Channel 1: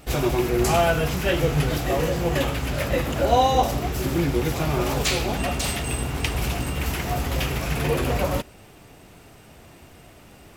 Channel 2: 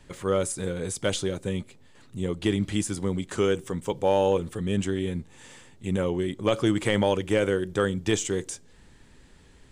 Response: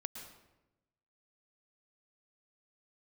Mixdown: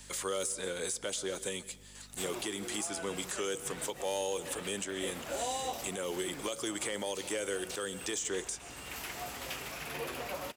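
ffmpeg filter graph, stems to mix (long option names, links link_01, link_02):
-filter_complex "[0:a]adelay=2100,volume=-9.5dB[link_01];[1:a]bass=frequency=250:gain=-7,treble=frequency=4000:gain=14,asoftclip=type=tanh:threshold=-9.5dB,aeval=exprs='val(0)+0.00631*(sin(2*PI*50*n/s)+sin(2*PI*2*50*n/s)/2+sin(2*PI*3*50*n/s)/3+sin(2*PI*4*50*n/s)/4+sin(2*PI*5*50*n/s)/5)':channel_layout=same,volume=0.5dB,asplit=3[link_02][link_03][link_04];[link_03]volume=-11dB[link_05];[link_04]apad=whole_len=563032[link_06];[link_01][link_06]sidechaincompress=threshold=-26dB:ratio=8:attack=16:release=638[link_07];[2:a]atrim=start_sample=2205[link_08];[link_05][link_08]afir=irnorm=-1:irlink=0[link_09];[link_07][link_02][link_09]amix=inputs=3:normalize=0,lowshelf=frequency=470:gain=-12,acrossover=split=170|530|2000|4500[link_10][link_11][link_12][link_13][link_14];[link_10]acompressor=threshold=-56dB:ratio=4[link_15];[link_11]acompressor=threshold=-33dB:ratio=4[link_16];[link_12]acompressor=threshold=-38dB:ratio=4[link_17];[link_13]acompressor=threshold=-43dB:ratio=4[link_18];[link_14]acompressor=threshold=-37dB:ratio=4[link_19];[link_15][link_16][link_17][link_18][link_19]amix=inputs=5:normalize=0,alimiter=level_in=0.5dB:limit=-24dB:level=0:latency=1:release=200,volume=-0.5dB"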